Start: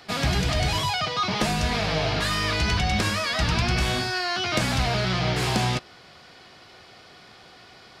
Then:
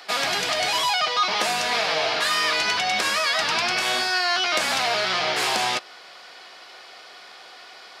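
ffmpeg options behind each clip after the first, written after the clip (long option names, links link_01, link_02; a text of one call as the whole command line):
ffmpeg -i in.wav -filter_complex "[0:a]highpass=560,asplit=2[link_01][link_02];[link_02]alimiter=limit=-20dB:level=0:latency=1:release=202,volume=-0.5dB[link_03];[link_01][link_03]amix=inputs=2:normalize=0" out.wav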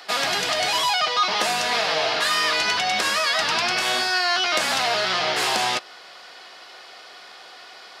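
ffmpeg -i in.wav -af "bandreject=frequency=2300:width=21,volume=1dB" out.wav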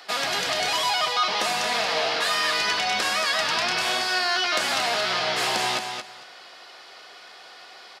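ffmpeg -i in.wav -af "aecho=1:1:227|454|681:0.473|0.0899|0.0171,volume=-3dB" out.wav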